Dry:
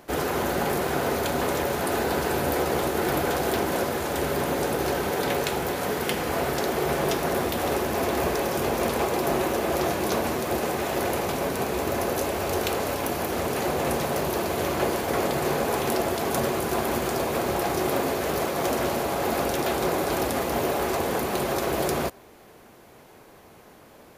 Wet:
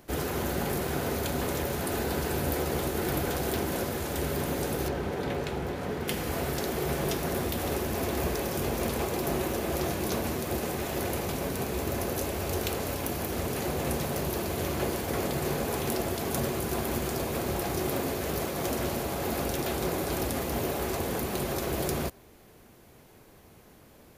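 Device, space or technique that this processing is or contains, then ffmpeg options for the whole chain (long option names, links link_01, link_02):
smiley-face EQ: -filter_complex "[0:a]lowshelf=frequency=140:gain=8,equalizer=frequency=890:width_type=o:width=2.2:gain=-4.5,highshelf=frequency=10000:gain=4,asettb=1/sr,asplit=3[link_01][link_02][link_03];[link_01]atrim=end=4.884[link_04];[link_02]atrim=start=4.88:end=6.08,asetpts=PTS-STARTPTS,afade=type=in:duration=0.004:curve=qsin,afade=type=out:start_time=1.196:duration=0.004:curve=qsin,aemphasis=mode=reproduction:type=75kf[link_05];[link_03]atrim=start=6.076[link_06];[link_04][link_05]acrossfade=duration=0.004:curve1=hsin:curve2=qsin[link_07];[link_07][link_06]acrossfade=duration=0.004:curve1=qsin:curve2=hsin,volume=-4dB"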